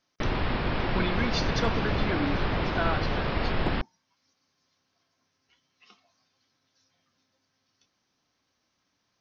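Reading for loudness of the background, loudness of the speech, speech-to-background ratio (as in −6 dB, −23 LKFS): −29.5 LKFS, −33.0 LKFS, −3.5 dB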